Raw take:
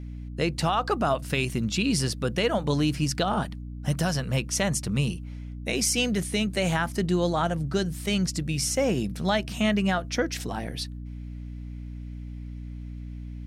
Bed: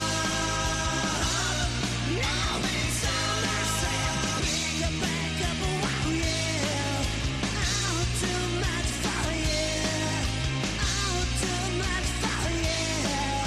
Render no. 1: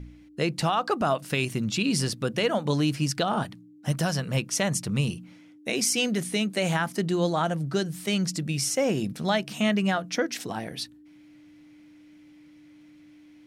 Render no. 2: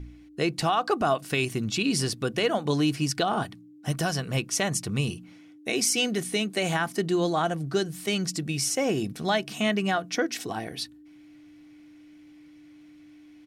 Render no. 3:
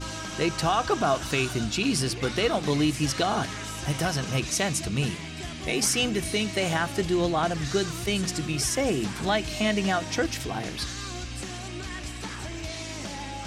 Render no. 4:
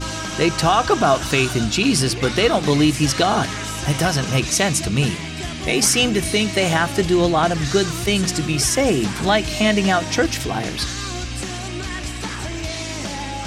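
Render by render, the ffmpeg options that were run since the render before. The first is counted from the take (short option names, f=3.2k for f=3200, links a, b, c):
-af "bandreject=f=60:t=h:w=4,bandreject=f=120:t=h:w=4,bandreject=f=180:t=h:w=4,bandreject=f=240:t=h:w=4"
-af "aecho=1:1:2.7:0.33"
-filter_complex "[1:a]volume=-8dB[a];[0:a][a]amix=inputs=2:normalize=0"
-af "volume=8dB"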